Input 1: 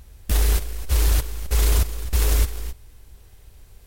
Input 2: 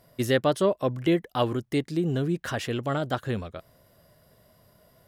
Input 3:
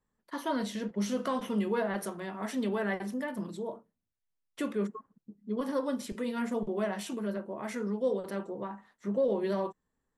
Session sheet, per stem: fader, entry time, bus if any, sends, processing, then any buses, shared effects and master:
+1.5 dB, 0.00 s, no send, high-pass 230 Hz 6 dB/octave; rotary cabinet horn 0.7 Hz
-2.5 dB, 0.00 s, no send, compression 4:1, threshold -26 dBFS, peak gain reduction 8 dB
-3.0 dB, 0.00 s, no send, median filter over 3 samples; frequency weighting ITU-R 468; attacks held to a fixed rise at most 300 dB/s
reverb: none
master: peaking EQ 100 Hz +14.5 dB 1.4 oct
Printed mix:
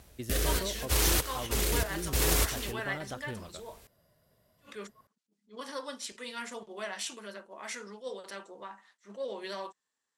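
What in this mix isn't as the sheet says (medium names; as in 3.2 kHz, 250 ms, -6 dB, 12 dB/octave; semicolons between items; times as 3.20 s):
stem 2 -2.5 dB -> -10.0 dB; master: missing peaking EQ 100 Hz +14.5 dB 1.4 oct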